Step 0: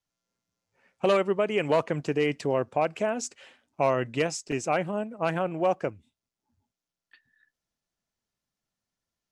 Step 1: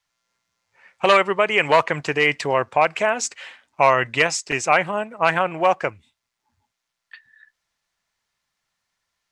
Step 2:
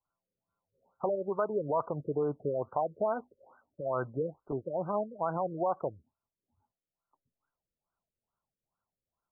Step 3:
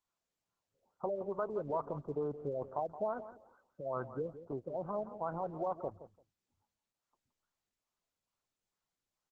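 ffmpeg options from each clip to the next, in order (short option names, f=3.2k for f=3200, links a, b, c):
-af "equalizer=f=250:t=o:w=1:g=-5,equalizer=f=1k:t=o:w=1:g=8,equalizer=f=2k:t=o:w=1:g=10,equalizer=f=4k:t=o:w=1:g=6,equalizer=f=8k:t=o:w=1:g=5,volume=3dB"
-filter_complex "[0:a]acrossover=split=1200[a][b];[a]alimiter=limit=-15.5dB:level=0:latency=1:release=82[c];[b]acompressor=threshold=-30dB:ratio=6[d];[c][d]amix=inputs=2:normalize=0,afftfilt=real='re*lt(b*sr/1024,560*pow(1600/560,0.5+0.5*sin(2*PI*2.3*pts/sr)))':imag='im*lt(b*sr/1024,560*pow(1600/560,0.5+0.5*sin(2*PI*2.3*pts/sr)))':win_size=1024:overlap=0.75,volume=-6dB"
-af "aecho=1:1:171|342:0.224|0.0358,volume=-5.5dB" -ar 48000 -c:a libopus -b:a 12k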